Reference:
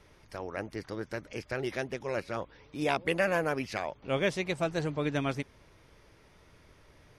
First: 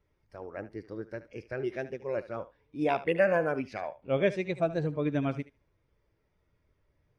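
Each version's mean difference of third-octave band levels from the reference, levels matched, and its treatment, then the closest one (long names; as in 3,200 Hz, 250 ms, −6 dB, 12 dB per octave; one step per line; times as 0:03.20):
9.0 dB: feedback echo with a high-pass in the loop 74 ms, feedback 22%, high-pass 420 Hz, level −10 dB
every bin expanded away from the loudest bin 1.5 to 1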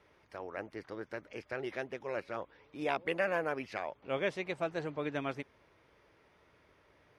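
3.0 dB: high-pass filter 51 Hz
bass and treble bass −8 dB, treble −11 dB
level −3.5 dB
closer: second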